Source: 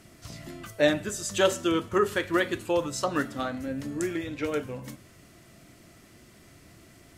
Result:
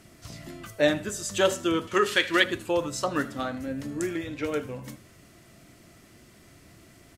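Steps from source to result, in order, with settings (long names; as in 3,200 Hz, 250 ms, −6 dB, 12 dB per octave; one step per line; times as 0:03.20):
0:01.87–0:02.44: meter weighting curve D
single-tap delay 78 ms −20.5 dB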